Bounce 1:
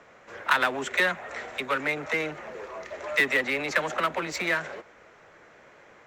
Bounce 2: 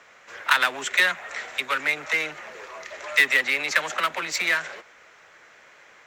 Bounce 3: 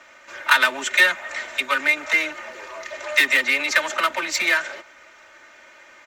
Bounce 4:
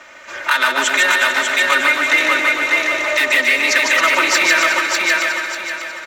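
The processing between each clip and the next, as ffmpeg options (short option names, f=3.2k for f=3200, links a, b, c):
-af "tiltshelf=f=970:g=-8"
-af "aecho=1:1:3.3:0.78,volume=1.5dB"
-filter_complex "[0:a]asplit=2[a][b];[b]aecho=0:1:593|1186|1779|2372:0.562|0.186|0.0612|0.0202[c];[a][c]amix=inputs=2:normalize=0,alimiter=limit=-12dB:level=0:latency=1:release=179,asplit=2[d][e];[e]aecho=0:1:150|270|366|442.8|504.2:0.631|0.398|0.251|0.158|0.1[f];[d][f]amix=inputs=2:normalize=0,volume=7.5dB"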